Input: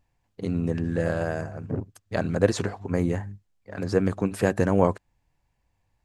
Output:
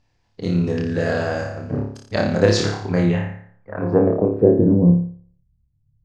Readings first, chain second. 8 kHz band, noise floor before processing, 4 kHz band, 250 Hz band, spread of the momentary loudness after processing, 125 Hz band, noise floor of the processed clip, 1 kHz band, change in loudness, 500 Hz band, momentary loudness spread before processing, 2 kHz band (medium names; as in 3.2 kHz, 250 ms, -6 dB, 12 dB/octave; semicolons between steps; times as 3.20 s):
+5.0 dB, -74 dBFS, +11.5 dB, +8.0 dB, 12 LU, +7.5 dB, -65 dBFS, +2.5 dB, +7.0 dB, +6.5 dB, 11 LU, +5.5 dB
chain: flutter echo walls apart 4.9 m, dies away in 0.58 s; low-pass sweep 5.1 kHz -> 130 Hz, 2.84–5.20 s; trim +3.5 dB